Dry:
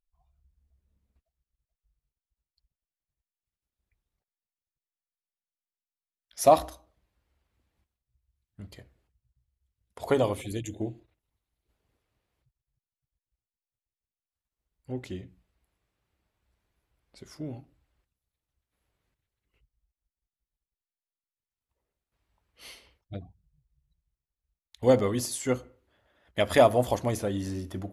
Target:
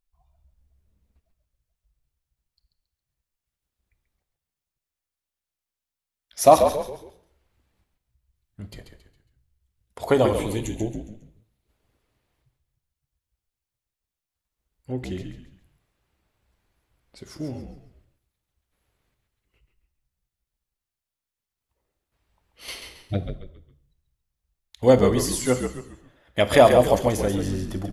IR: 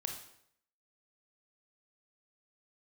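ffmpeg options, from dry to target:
-filter_complex "[0:a]asettb=1/sr,asplit=3[a][b][c];[a]atrim=end=22.684[d];[b]atrim=start=22.68:end=23.23,asetpts=PTS-STARTPTS,afade=t=in:d=0.004:c=qsin,afade=t=out:st=0.546:d=0.004:c=qsin,acontrast=84[e];[c]atrim=start=23.226[f];[d][e]acrossfade=d=0.004:c1=hsin:c2=qsin[g];[g][f]acrossfade=d=0.004:c1=qsin:c2=hsin,asplit=5[h][i][j][k][l];[i]adelay=137,afreqshift=-59,volume=-7dB[m];[j]adelay=274,afreqshift=-118,volume=-15.9dB[n];[k]adelay=411,afreqshift=-177,volume=-24.7dB[o];[l]adelay=548,afreqshift=-236,volume=-33.6dB[p];[h][m][n][o][p]amix=inputs=5:normalize=0,asplit=2[q][r];[1:a]atrim=start_sample=2205[s];[r][s]afir=irnorm=-1:irlink=0,volume=-7dB[t];[q][t]amix=inputs=2:normalize=0,volume=2.5dB"

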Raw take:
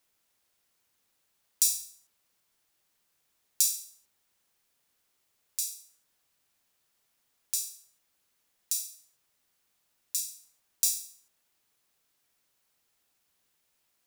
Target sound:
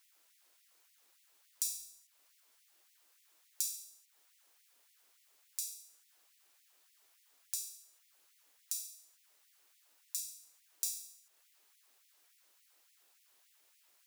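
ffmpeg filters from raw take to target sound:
-filter_complex "[0:a]acrossover=split=180[a][b];[b]acompressor=threshold=-52dB:ratio=2[c];[a][c]amix=inputs=2:normalize=0,afftfilt=real='re*gte(b*sr/1024,230*pow(1900/230,0.5+0.5*sin(2*PI*3.5*pts/sr)))':imag='im*gte(b*sr/1024,230*pow(1900/230,0.5+0.5*sin(2*PI*3.5*pts/sr)))':win_size=1024:overlap=0.75,volume=5.5dB"

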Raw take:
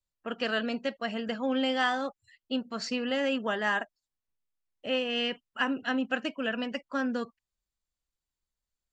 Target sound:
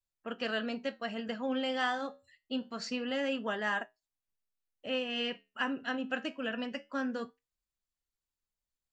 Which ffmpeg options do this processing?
-af "flanger=delay=8.6:depth=4.9:regen=-73:speed=0.25:shape=sinusoidal"

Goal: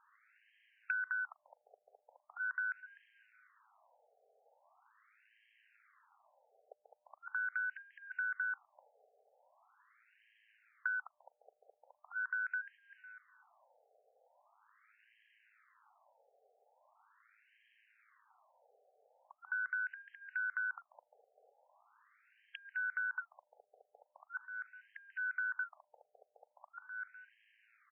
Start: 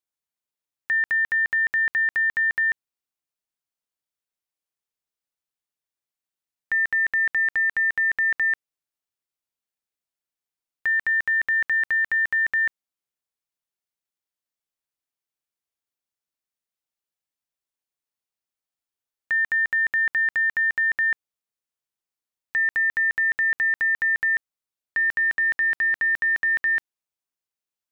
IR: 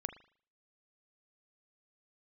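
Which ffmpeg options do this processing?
-filter_complex "[0:a]aeval=exprs='val(0)+0.5*0.0211*sgn(val(0))':c=same,acrossover=split=2600[a][b];[b]acompressor=threshold=-46dB:ratio=4:attack=1:release=60[c];[a][c]amix=inputs=2:normalize=0,agate=range=-16dB:threshold=-33dB:ratio=16:detection=peak,tremolo=f=110:d=0.519,afreqshift=-300,asplit=2[d][e];[e]adelay=251,lowpass=f=950:p=1,volume=-13dB,asplit=2[f][g];[g]adelay=251,lowpass=f=950:p=1,volume=0.32,asplit=2[h][i];[i]adelay=251,lowpass=f=950:p=1,volume=0.32[j];[d][f][h][j]amix=inputs=4:normalize=0,asplit=2[k][l];[1:a]atrim=start_sample=2205[m];[l][m]afir=irnorm=-1:irlink=0,volume=-14dB[n];[k][n]amix=inputs=2:normalize=0,acompressor=threshold=-37dB:ratio=16,highshelf=f=2.4k:g=-7,aeval=exprs='(mod(18.8*val(0)+1,2)-1)/18.8':c=same,afftfilt=real='re*between(b*sr/1024,560*pow(2300/560,0.5+0.5*sin(2*PI*0.41*pts/sr))/1.41,560*pow(2300/560,0.5+0.5*sin(2*PI*0.41*pts/sr))*1.41)':imag='im*between(b*sr/1024,560*pow(2300/560,0.5+0.5*sin(2*PI*0.41*pts/sr))/1.41,560*pow(2300/560,0.5+0.5*sin(2*PI*0.41*pts/sr))*1.41)':win_size=1024:overlap=0.75,volume=4.5dB"

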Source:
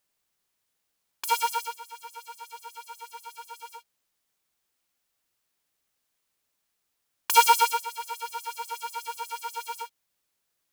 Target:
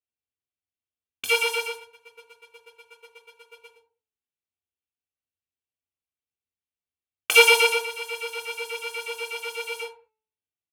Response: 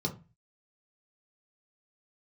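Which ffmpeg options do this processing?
-filter_complex "[0:a]aecho=1:1:2.6:0.46,agate=range=-27dB:threshold=-41dB:ratio=16:detection=peak,bandreject=f=436.7:t=h:w=4,bandreject=f=873.4:t=h:w=4,bandreject=f=1.3101k:t=h:w=4,bandreject=f=1.7468k:t=h:w=4,bandreject=f=2.1835k:t=h:w=4,bandreject=f=2.6202k:t=h:w=4[a];[1:a]atrim=start_sample=2205,atrim=end_sample=6174,asetrate=26019,aresample=44100[b];[a][b]afir=irnorm=-1:irlink=0,volume=-1dB"

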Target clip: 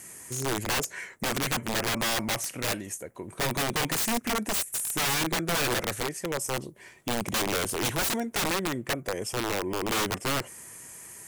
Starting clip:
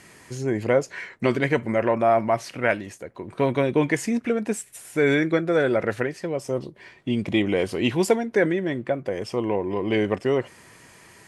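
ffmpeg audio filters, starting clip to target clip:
-af "aexciter=amount=5.6:drive=6.4:freq=6.3k,aeval=exprs='(mod(8.41*val(0)+1,2)-1)/8.41':c=same,volume=-3.5dB"

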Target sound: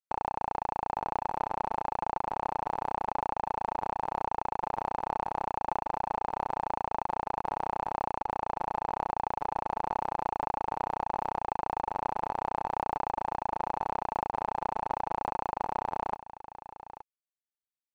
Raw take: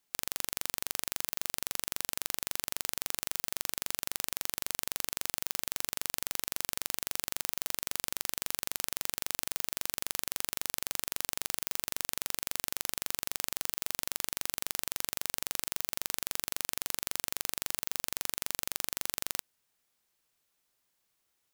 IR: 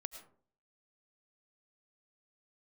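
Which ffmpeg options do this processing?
-af "atempo=1.2,lowpass=f=820:t=q:w=7.8,aeval=exprs='sgn(val(0))*max(abs(val(0))-0.00106,0)':c=same,aecho=1:1:876:0.211,asetrate=46722,aresample=44100,atempo=0.943874,volume=6.5dB"

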